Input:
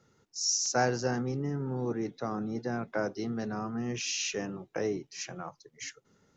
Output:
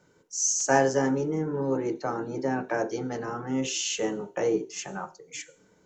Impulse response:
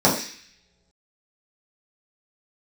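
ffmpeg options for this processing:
-filter_complex "[0:a]asplit=2[s0][s1];[1:a]atrim=start_sample=2205,asetrate=66150,aresample=44100[s2];[s1][s2]afir=irnorm=-1:irlink=0,volume=0.075[s3];[s0][s3]amix=inputs=2:normalize=0,asetrate=48000,aresample=44100,volume=1.26"

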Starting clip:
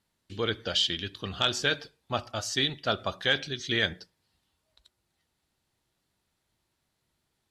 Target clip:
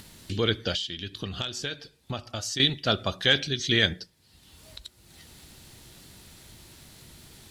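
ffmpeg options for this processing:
-filter_complex "[0:a]asplit=2[s0][s1];[s1]acompressor=mode=upward:threshold=0.0355:ratio=2.5,volume=1.33[s2];[s0][s2]amix=inputs=2:normalize=0,equalizer=f=960:w=0.56:g=-7.5,asettb=1/sr,asplit=3[s3][s4][s5];[s3]atrim=end=0.744[s6];[s4]atrim=start=0.74:end=2.6,asetpts=PTS-STARTPTS,afade=t=in:d=0.004:c=qsin,afade=t=out:st=1.856:d=0.004:c=qsin,acompressor=threshold=0.0316:ratio=6[s7];[s5]atrim=start=2.596[s8];[s6][s7]acrossfade=d=0.004:c1=hsin:c2=qsin[s9];[s9][s8]acrossfade=d=0.004:c1=qsin:c2=hsin"

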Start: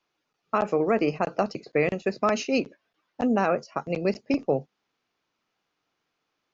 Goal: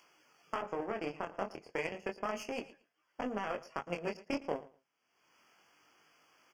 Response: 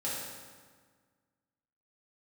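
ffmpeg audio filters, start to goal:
-filter_complex "[0:a]aeval=exprs='if(lt(val(0),0),0.447*val(0),val(0))':c=same,highpass=71,equalizer=f=130:w=0.33:g=-8,acompressor=mode=upward:threshold=0.00398:ratio=2.5,alimiter=limit=0.1:level=0:latency=1:release=14,acompressor=threshold=0.01:ratio=2.5,flanger=delay=19:depth=6.7:speed=0.32,aeval=exprs='0.0447*(cos(1*acos(clip(val(0)/0.0447,-1,1)))-cos(1*PI/2))+0.00355*(cos(7*acos(clip(val(0)/0.0447,-1,1)))-cos(7*PI/2))':c=same,asuperstop=centerf=3900:order=20:qfactor=3.4,aecho=1:1:113|226:0.119|0.0202,asettb=1/sr,asplit=3[s0][s1][s2];[s0]atrim=end=0.624[s3];[s1]atrim=start=0.62:end=2.62,asetpts=PTS-STARTPTS,afade=t=in:d=0.004:c=qsin,afade=t=out:st=1.996:d=0.004:c=qsin,adynamicequalizer=threshold=0.00141:dfrequency=1800:dqfactor=0.7:tfrequency=1800:tqfactor=0.7:attack=5:release=100:ratio=0.375:range=2.5:mode=cutabove:tftype=highshelf[s4];[s2]atrim=start=2.616[s5];[s3][s4]acrossfade=d=0.004:c1=hsin:c2=qsin[s6];[s6][s5]acrossfade=d=0.004:c1=qsin:c2=hsin,volume=2.37"

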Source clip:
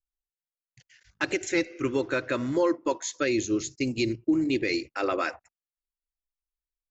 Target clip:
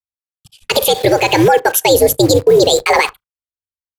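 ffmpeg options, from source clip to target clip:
-filter_complex "[0:a]agate=range=0.0224:threshold=0.002:ratio=3:detection=peak,afreqshift=-58,asplit=2[s0][s1];[s1]acrusher=bits=6:mix=0:aa=0.000001,volume=0.631[s2];[s0][s2]amix=inputs=2:normalize=0,asplit=2[s3][s4];[s4]adelay=65,lowpass=f=820:p=1,volume=0.075,asplit=2[s5][s6];[s6]adelay=65,lowpass=f=820:p=1,volume=0.36[s7];[s3][s5][s7]amix=inputs=3:normalize=0,asetrate=76440,aresample=44100,alimiter=level_in=7.08:limit=0.891:release=50:level=0:latency=1,volume=0.891"

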